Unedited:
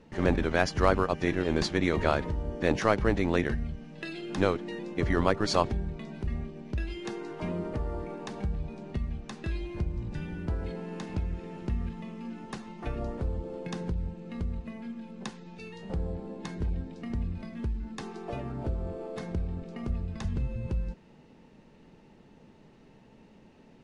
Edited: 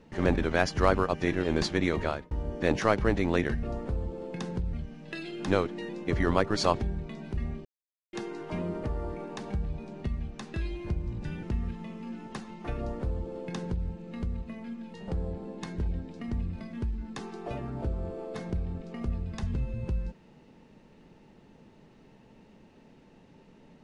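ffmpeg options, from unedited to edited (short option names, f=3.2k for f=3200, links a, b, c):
-filter_complex "[0:a]asplit=8[a][b][c][d][e][f][g][h];[a]atrim=end=2.31,asetpts=PTS-STARTPTS,afade=t=out:st=1.74:d=0.57:c=qsin[i];[b]atrim=start=2.31:end=3.632,asetpts=PTS-STARTPTS,afade=t=in:d=0.004:c=hsin[j];[c]atrim=start=12.948:end=14.052[k];[d]atrim=start=3.628:end=6.55,asetpts=PTS-STARTPTS,afade=t=out:st=2.918:d=0.004:c=hsin[l];[e]atrim=start=6.55:end=7.03,asetpts=PTS-STARTPTS,volume=0[m];[f]atrim=start=7.03:end=10.332,asetpts=PTS-STARTPTS,afade=t=in:d=0.004:c=hsin[n];[g]atrim=start=11.608:end=15.122[o];[h]atrim=start=15.758[p];[i][j]concat=n=2:v=0:a=1[q];[q][k]acrossfade=d=0.004:c1=hsin:c2=hsin[r];[l][m][n]concat=n=3:v=0:a=1[s];[r][s]acrossfade=d=0.004:c1=hsin:c2=hsin[t];[t][o]acrossfade=d=0.004:c1=hsin:c2=hsin[u];[u][p]acrossfade=d=0.004:c1=hsin:c2=hsin"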